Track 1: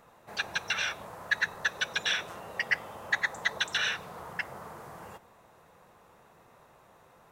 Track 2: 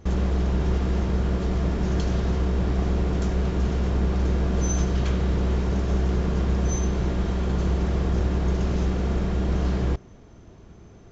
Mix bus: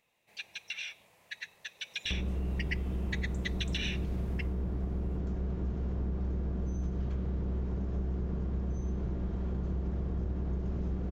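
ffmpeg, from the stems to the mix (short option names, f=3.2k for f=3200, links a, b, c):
-filter_complex "[0:a]highshelf=f=1.8k:t=q:w=3:g=9,volume=-9dB,afade=t=in:st=1.79:d=0.77:silence=0.281838,afade=t=out:st=4.36:d=0.22:silence=0.281838[a];[1:a]acrossover=split=360[b][c];[c]acompressor=threshold=-37dB:ratio=6[d];[b][d]amix=inputs=2:normalize=0,highshelf=f=2.1k:g=-12,adelay=2050,volume=-1.5dB[e];[a][e]amix=inputs=2:normalize=0,acompressor=threshold=-33dB:ratio=3"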